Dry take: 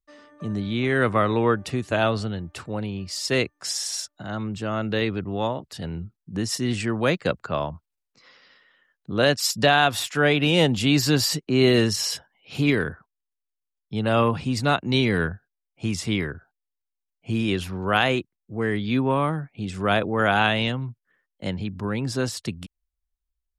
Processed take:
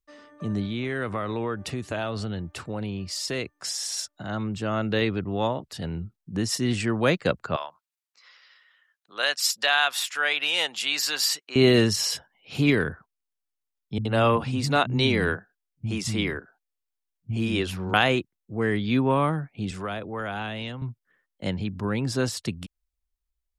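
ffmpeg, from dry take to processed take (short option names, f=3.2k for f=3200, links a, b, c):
-filter_complex "[0:a]asettb=1/sr,asplit=3[a][b][c];[a]atrim=end=0.654[d];[b]atrim=start=0.65:end=3.97,asetpts=PTS-STARTPTS,afade=t=in:d=0.004:c=qsin,afade=t=out:st=3.316:d=0.004:c=qsin,acompressor=threshold=-27dB:ratio=3:attack=3.2:release=140:knee=1:detection=peak[e];[c]atrim=start=3.966[f];[d][e]acrossfade=d=0.004:c1=hsin:c2=qsin[g];[g][f]acrossfade=d=0.004:c1=qsin:c2=hsin,asettb=1/sr,asplit=3[h][i][j];[h]atrim=end=7.564[k];[i]atrim=start=7.56:end=11.56,asetpts=PTS-STARTPTS,afade=t=in:d=0.004:c=qsin,afade=t=out:st=3.996:d=0.004:c=qsin,highpass=1.1k[l];[j]atrim=start=11.556[m];[k][l]acrossfade=d=0.004:c1=hsin:c2=qsin[n];[n][m]acrossfade=d=0.004:c1=qsin:c2=hsin,asettb=1/sr,asplit=3[o][p][q];[o]atrim=end=13.984[r];[p]atrim=start=13.98:end=17.94,asetpts=PTS-STARTPTS,afade=t=in:d=0.004:c=qsin,afade=t=out:st=3.956:d=0.004:c=qsin,acrossover=split=200[s][t];[t]adelay=70[u];[s][u]amix=inputs=2:normalize=0,atrim=end_sample=174636[v];[q]atrim=start=17.936[w];[r][v]acrossfade=d=0.004:c1=hsin:c2=qsin[x];[x][w]acrossfade=d=0.004:c1=qsin:c2=hsin,asettb=1/sr,asplit=3[y][z][aa];[y]atrim=end=19.714[ab];[z]atrim=start=19.71:end=20.82,asetpts=PTS-STARTPTS,afade=t=in:d=0.004:c=qsin,afade=t=out:st=1.106:d=0.004:c=qsin,acrossover=split=97|500[ac][ad][ae];[ac]acompressor=threshold=-48dB:ratio=4[af];[ad]acompressor=threshold=-38dB:ratio=4[ag];[ae]acompressor=threshold=-33dB:ratio=4[ah];[af][ag][ah]amix=inputs=3:normalize=0[ai];[aa]atrim=start=20.816[aj];[ab][ai]acrossfade=d=0.004:c1=hsin:c2=qsin[ak];[ak][aj]acrossfade=d=0.004:c1=qsin:c2=hsin"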